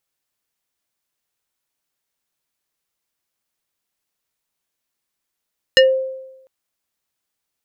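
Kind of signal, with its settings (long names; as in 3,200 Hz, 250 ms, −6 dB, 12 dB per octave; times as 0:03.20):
two-operator FM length 0.70 s, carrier 526 Hz, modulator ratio 4.45, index 1.8, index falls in 0.19 s exponential, decay 0.95 s, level −5 dB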